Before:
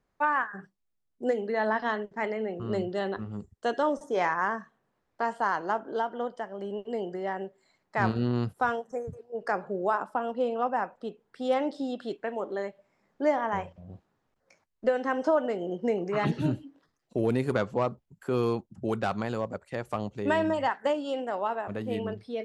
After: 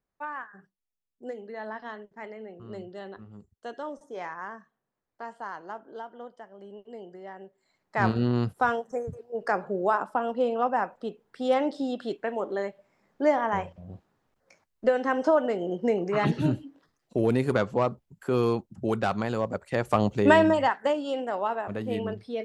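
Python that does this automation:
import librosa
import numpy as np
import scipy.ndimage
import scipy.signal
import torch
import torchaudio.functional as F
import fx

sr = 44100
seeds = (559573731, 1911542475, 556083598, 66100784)

y = fx.gain(x, sr, db=fx.line((7.39, -10.0), (8.06, 2.5), (19.33, 2.5), (20.13, 10.5), (20.82, 1.5)))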